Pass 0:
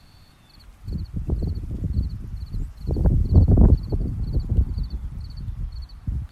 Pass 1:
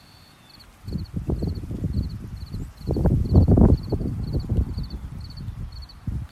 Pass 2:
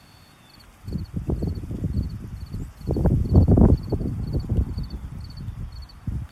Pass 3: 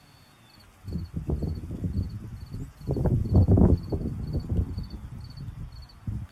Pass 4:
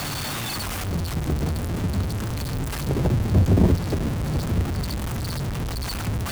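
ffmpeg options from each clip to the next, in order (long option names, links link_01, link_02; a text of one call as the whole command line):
ffmpeg -i in.wav -af "highpass=frequency=160:poles=1,volume=5dB" out.wav
ffmpeg -i in.wav -af "bandreject=frequency=4100:width=6.5" out.wav
ffmpeg -i in.wav -af "flanger=delay=6.6:depth=7.1:regen=57:speed=0.36:shape=triangular" out.wav
ffmpeg -i in.wav -af "aeval=exprs='val(0)+0.5*0.0708*sgn(val(0))':channel_layout=same" out.wav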